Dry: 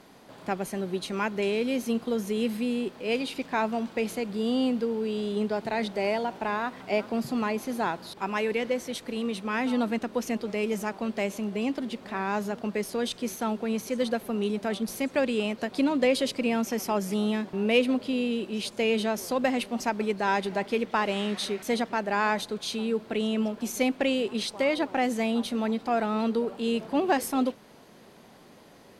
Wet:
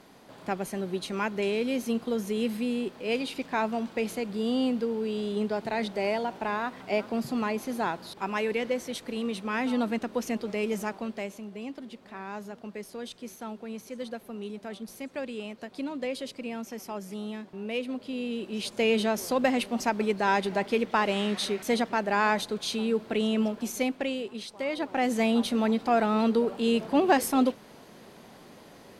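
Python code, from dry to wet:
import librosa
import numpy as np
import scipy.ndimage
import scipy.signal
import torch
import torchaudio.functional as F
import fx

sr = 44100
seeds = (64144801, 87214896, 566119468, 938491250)

y = fx.gain(x, sr, db=fx.line((10.88, -1.0), (11.44, -9.5), (17.82, -9.5), (18.83, 1.0), (23.47, 1.0), (24.47, -9.0), (25.22, 2.5)))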